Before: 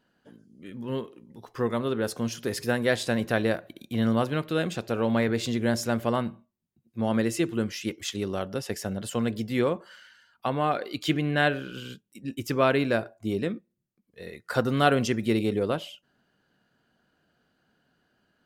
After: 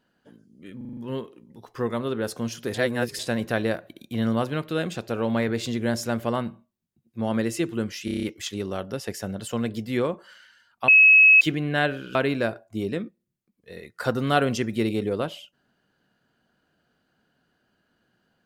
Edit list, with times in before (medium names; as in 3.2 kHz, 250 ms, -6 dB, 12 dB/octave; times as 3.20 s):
0.77 s: stutter 0.04 s, 6 plays
2.54–2.99 s: reverse
7.85 s: stutter 0.03 s, 7 plays
10.50–11.03 s: bleep 2.57 kHz -10 dBFS
11.77–12.65 s: delete